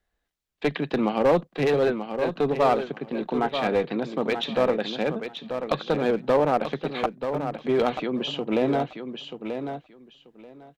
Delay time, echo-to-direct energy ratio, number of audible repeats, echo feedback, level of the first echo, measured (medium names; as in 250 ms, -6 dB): 935 ms, -8.0 dB, 2, 17%, -8.0 dB